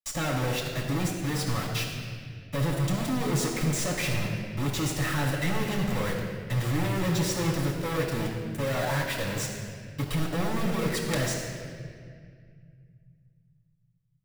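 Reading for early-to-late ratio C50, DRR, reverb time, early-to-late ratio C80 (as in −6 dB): 2.5 dB, −4.5 dB, 2.0 s, 4.0 dB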